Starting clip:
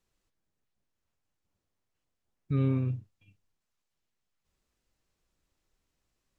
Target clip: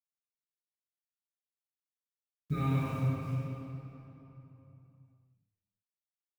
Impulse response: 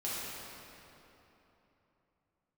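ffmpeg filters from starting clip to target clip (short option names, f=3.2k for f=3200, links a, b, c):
-filter_complex "[0:a]asettb=1/sr,asplit=3[a][b][c];[a]atrim=end=2.534[d];[b]atrim=start=2.53:end=2.93,asetpts=PTS-STARTPTS,afade=t=in:d=0.004:c=qsin,afade=t=out:st=0.396:d=0.004:c=qsin,lowshelf=f=540:t=q:w=3:g=-9.5[e];[c]atrim=start=2.926[f];[d][e]acrossfade=d=0.004:c1=hsin:c2=qsin[g];[g][f]acrossfade=d=0.004:c1=qsin:c2=hsin,acrusher=bits=9:mix=0:aa=0.000001[h];[1:a]atrim=start_sample=2205[i];[h][i]afir=irnorm=-1:irlink=0,volume=2dB"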